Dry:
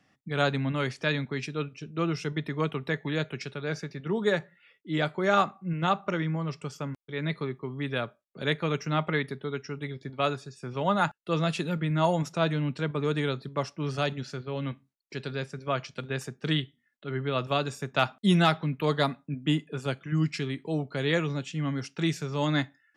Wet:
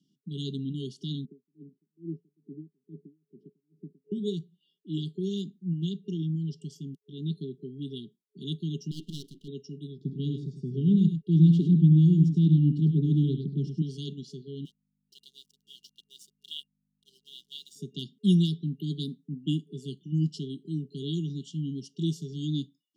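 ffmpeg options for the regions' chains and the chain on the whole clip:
-filter_complex "[0:a]asettb=1/sr,asplit=3[a][b][c];[a]atrim=end=1.254[d];[b]atrim=start=1.25:end=4.12,asetpts=PTS-STARTPTS,afade=t=in:d=0.004:c=qsin,afade=t=out:st=2.866:d=0.004:c=qsin,asuperpass=centerf=320:order=4:qfactor=0.91,aeval=exprs='val(0)*pow(10,-38*(0.5-0.5*cos(2*PI*2.3*n/s))/20)':c=same[e];[c]atrim=start=4.116[f];[d][e]acrossfade=d=0.004:c1=hsin:c2=qsin[g];[g][f]acrossfade=d=0.004:c1=qsin:c2=hsin,asettb=1/sr,asplit=3[h][i][j];[h]atrim=end=8.914[k];[i]atrim=start=8.91:end=9.48,asetpts=PTS-STARTPTS,afade=t=in:d=0.004:c=qsin,afade=t=out:st=0.566:d=0.004:c=qsin,lowshelf=f=94:g=-8.5,aeval=exprs='abs(val(0))':c=same[l];[j]atrim=start=9.476[m];[k][l]acrossfade=d=0.004:c1=hsin:c2=qsin[n];[n][m]acrossfade=d=0.004:c1=qsin:c2=hsin,asettb=1/sr,asplit=3[o][p][q];[o]atrim=end=9.984[r];[p]atrim=start=9.98:end=13.82,asetpts=PTS-STARTPTS,afade=t=in:d=0.004:c=qsin,afade=t=out:st=3.836:d=0.004:c=qsin,aemphasis=mode=reproduction:type=riaa,aecho=1:1:71|101:0.237|0.376,atrim=end_sample=169344[s];[q]atrim=start=13.816[t];[r][s]acrossfade=d=0.004:c1=hsin:c2=qsin[u];[u][t]acrossfade=d=0.004:c1=qsin:c2=hsin,asettb=1/sr,asplit=3[v][w][x];[v]atrim=end=14.654[y];[w]atrim=start=14.65:end=17.76,asetpts=PTS-STARTPTS,afade=t=in:d=0.004:c=qsin,afade=t=out:st=3.106:d=0.004:c=qsin,highpass=f=910:w=0.5412,highpass=f=910:w=1.3066,aeval=exprs='sgn(val(0))*max(abs(val(0))-0.00316,0)':c=same,aeval=exprs='val(0)+0.000316*(sin(2*PI*50*n/s)+sin(2*PI*2*50*n/s)/2+sin(2*PI*3*50*n/s)/3+sin(2*PI*4*50*n/s)/4+sin(2*PI*5*50*n/s)/5)':c=same[z];[x]atrim=start=17.756[aa];[y][z]acrossfade=d=0.004:c1=hsin:c2=qsin[ab];[ab][aa]acrossfade=d=0.004:c1=qsin:c2=hsin,afftfilt=real='re*(1-between(b*sr/4096,430,2800))':imag='im*(1-between(b*sr/4096,430,2800))':win_size=4096:overlap=0.75,lowshelf=f=120:t=q:w=3:g=-11.5,volume=-5.5dB"

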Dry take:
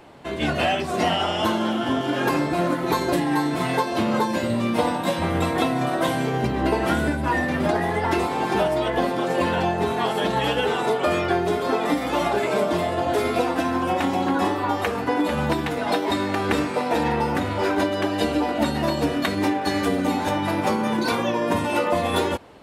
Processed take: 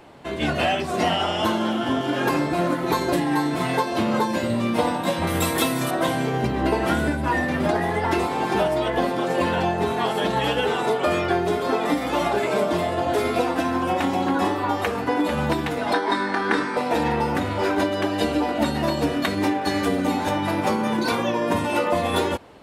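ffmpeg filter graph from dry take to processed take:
-filter_complex "[0:a]asettb=1/sr,asplit=3[a][b][c];[a]atrim=end=5.274[d];[b]atrim=start=5.27:end=5.91,asetpts=PTS-STARTPTS,afade=t=in:d=0.004:c=qsin,afade=t=out:st=0.636:d=0.004:c=qsin,aemphasis=mode=production:type=75fm,bandreject=f=730:w=12[e];[c]atrim=start=5.906[f];[d][e]acrossfade=d=0.004:c1=hsin:c2=qsin[g];[g][f]acrossfade=d=0.004:c1=qsin:c2=hsin,asettb=1/sr,asplit=3[h][i][j];[h]atrim=end=15.934[k];[i]atrim=start=15.93:end=16.77,asetpts=PTS-STARTPTS,afade=t=in:d=0.004:c=qsin,afade=t=out:st=0.836:d=0.004:c=qsin,highpass=210,equalizer=f=590:t=q:w=4:g=-6,equalizer=f=990:t=q:w=4:g=4,equalizer=f=1.6k:t=q:w=4:g=8,equalizer=f=2.7k:t=q:w=4:g=-8,equalizer=f=7.2k:t=q:w=4:g=-10,lowpass=f=9.2k:w=0.5412,lowpass=f=9.2k:w=1.3066,asplit=2[l][m];[m]adelay=25,volume=-7.5dB[n];[l][n]amix=inputs=2:normalize=0,atrim=end_sample=37044[o];[j]atrim=start=16.766[p];[k][o]acrossfade=d=0.004:c1=hsin:c2=qsin[q];[q][p]acrossfade=d=0.004:c1=qsin:c2=hsin"

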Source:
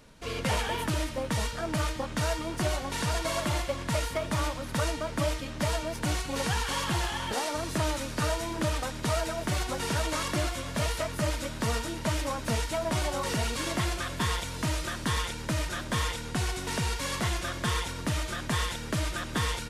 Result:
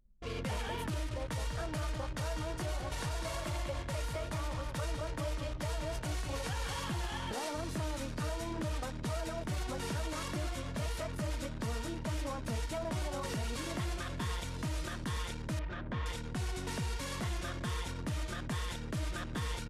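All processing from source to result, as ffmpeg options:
-filter_complex "[0:a]asettb=1/sr,asplit=3[a][b][c];[a]atrim=end=0.914[d];[b]atrim=start=0.91:end=6.79,asetpts=PTS-STARTPTS,afade=t=in:d=0.004:c=qsin,afade=t=out:st=5.876:d=0.004:c=qsin,equalizer=f=220:w=2.3:g=-11,asplit=2[e][f];[f]adelay=20,volume=-13dB[g];[e][g]amix=inputs=2:normalize=0,atrim=end_sample=259308,aecho=1:1:198:0.398,atrim=end_sample=259308[h];[c]atrim=start=6.786[i];[d][h]acrossfade=d=0.004:c1=hsin:c2=qsin[j];[j][i]acrossfade=d=0.004:c1=qsin:c2=hsin,asettb=1/sr,asplit=3[k][l][m];[k]atrim=end=15.594[n];[l]atrim=start=15.59:end=16.06,asetpts=PTS-STARTPTS,afade=t=in:d=0.004:c=qsin,afade=t=out:st=0.466:d=0.004:c=qsin,lowpass=2.9k,acompressor=threshold=-32dB:ratio=2:attack=3.2:release=140:knee=1:detection=peak[o];[m]atrim=start=16.056[p];[n][o]acrossfade=d=0.004:c1=hsin:c2=qsin[q];[q][p]acrossfade=d=0.004:c1=qsin:c2=hsin,anlmdn=0.631,lowshelf=f=400:g=5.5,alimiter=limit=-21.5dB:level=0:latency=1:release=48,volume=-7dB"

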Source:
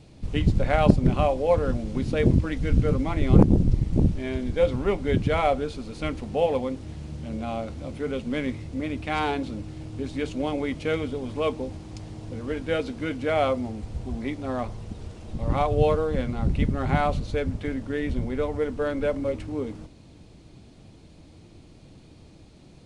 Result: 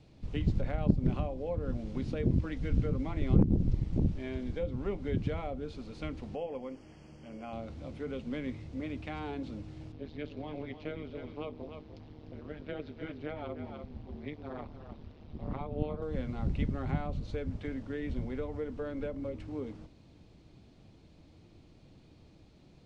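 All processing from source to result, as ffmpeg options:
-filter_complex "[0:a]asettb=1/sr,asplit=3[a][b][c];[a]atrim=end=6.354[d];[b]atrim=start=6.35:end=7.53,asetpts=PTS-STARTPTS,afade=t=in:d=0.004:c=qsin,afade=t=out:st=1.176:d=0.004:c=qsin,asuperstop=centerf=3800:order=12:qfactor=3.6,equalizer=f=76:w=0.53:g=-14.5[e];[c]atrim=start=7.526[f];[d][e]acrossfade=d=0.004:c1=hsin:c2=qsin[g];[g][f]acrossfade=d=0.004:c1=qsin:c2=hsin,asettb=1/sr,asplit=3[h][i][j];[h]atrim=end=9.924[k];[i]atrim=start=9.92:end=16.02,asetpts=PTS-STARTPTS,afade=t=in:d=0.004:c=qsin,afade=t=out:st=6.096:d=0.004:c=qsin,lowpass=f=4.8k:w=0.5412,lowpass=f=4.8k:w=1.3066,tremolo=f=150:d=0.974,aecho=1:1:298:0.266,atrim=end_sample=269010[l];[j]atrim=start=16.016[m];[k][l]acrossfade=d=0.004:c1=hsin:c2=qsin[n];[n][m]acrossfade=d=0.004:c1=qsin:c2=hsin,lowpass=5.8k,acrossover=split=400[o][p];[p]acompressor=threshold=-32dB:ratio=10[q];[o][q]amix=inputs=2:normalize=0,volume=-8dB"

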